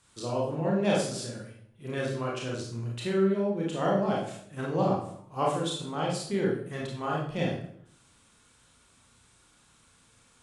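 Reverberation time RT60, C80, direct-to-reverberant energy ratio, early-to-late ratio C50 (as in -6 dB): 0.65 s, 7.0 dB, -4.0 dB, 2.0 dB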